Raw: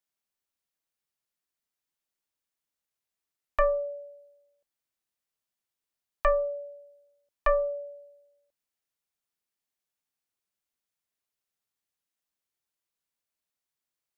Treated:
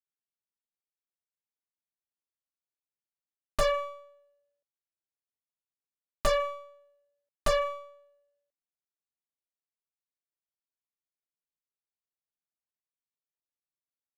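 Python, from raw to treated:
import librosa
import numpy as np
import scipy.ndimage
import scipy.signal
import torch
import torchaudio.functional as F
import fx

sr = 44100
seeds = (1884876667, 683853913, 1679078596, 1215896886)

y = scipy.ndimage.median_filter(x, 25, mode='constant')
y = fx.rider(y, sr, range_db=10, speed_s=0.5)
y = fx.cheby_harmonics(y, sr, harmonics=(5, 6, 7), levels_db=(-33, -9, -20), full_scale_db=-20.0)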